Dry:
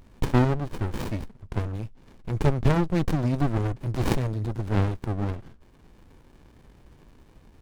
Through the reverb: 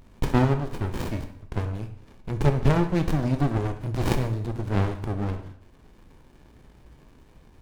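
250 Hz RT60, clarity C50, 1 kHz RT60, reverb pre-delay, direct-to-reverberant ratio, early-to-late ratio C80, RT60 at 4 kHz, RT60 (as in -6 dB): 0.75 s, 10.5 dB, 0.65 s, 6 ms, 6.5 dB, 13.0 dB, 0.65 s, 0.65 s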